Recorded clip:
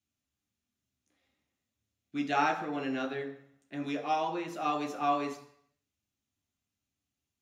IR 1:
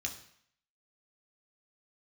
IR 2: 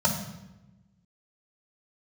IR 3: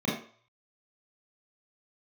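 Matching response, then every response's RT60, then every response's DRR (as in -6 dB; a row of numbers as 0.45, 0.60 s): 1; 0.65, 0.95, 0.50 s; 1.5, -1.5, -6.5 dB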